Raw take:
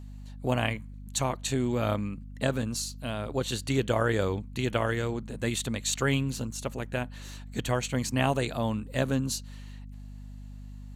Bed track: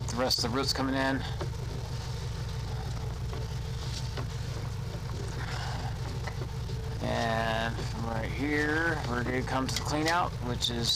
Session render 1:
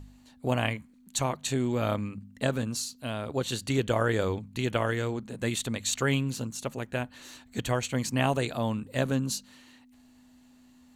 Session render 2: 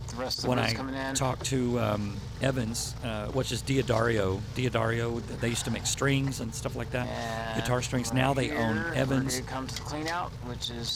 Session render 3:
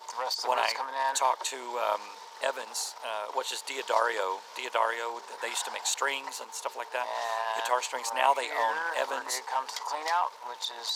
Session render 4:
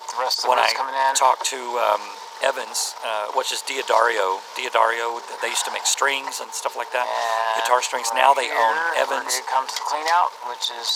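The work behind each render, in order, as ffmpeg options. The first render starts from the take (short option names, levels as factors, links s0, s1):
-af "bandreject=f=50:t=h:w=4,bandreject=f=100:t=h:w=4,bandreject=f=150:t=h:w=4,bandreject=f=200:t=h:w=4"
-filter_complex "[1:a]volume=0.596[s0];[0:a][s0]amix=inputs=2:normalize=0"
-af "highpass=f=530:w=0.5412,highpass=f=530:w=1.3066,equalizer=f=950:t=o:w=0.31:g=13.5"
-af "volume=2.99,alimiter=limit=0.794:level=0:latency=1"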